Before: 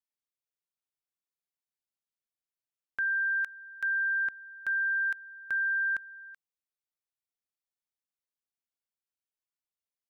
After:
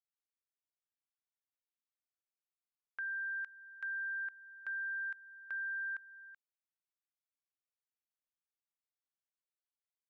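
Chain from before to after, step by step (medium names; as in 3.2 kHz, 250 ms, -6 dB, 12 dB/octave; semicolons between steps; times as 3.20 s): low-pass 1.4 kHz 12 dB/octave; differentiator; in parallel at -1 dB: compression, threshold -57 dBFS, peak gain reduction 11.5 dB; on the sum: trim +5 dB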